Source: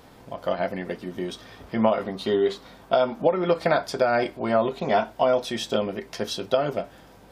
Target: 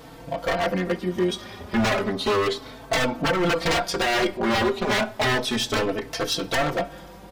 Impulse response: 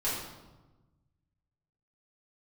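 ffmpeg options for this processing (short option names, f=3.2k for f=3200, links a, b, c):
-filter_complex "[0:a]aeval=exprs='0.0708*(abs(mod(val(0)/0.0708+3,4)-2)-1)':c=same,asplit=2[a][b];[1:a]atrim=start_sample=2205[c];[b][c]afir=irnorm=-1:irlink=0,volume=-27dB[d];[a][d]amix=inputs=2:normalize=0,asplit=2[e][f];[f]adelay=4,afreqshift=0.32[g];[e][g]amix=inputs=2:normalize=1,volume=9dB"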